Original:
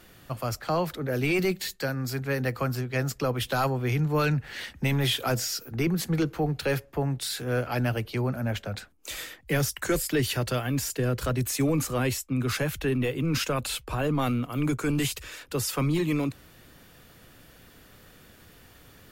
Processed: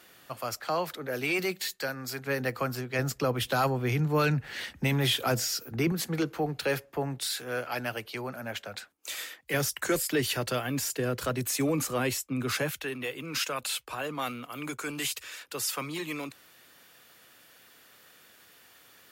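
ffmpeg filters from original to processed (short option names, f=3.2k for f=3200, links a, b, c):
-af "asetnsamples=n=441:p=0,asendcmd='2.27 highpass f 270;2.99 highpass f 110;5.92 highpass f 310;7.33 highpass f 740;9.54 highpass f 260;12.71 highpass f 1000',highpass=f=570:p=1"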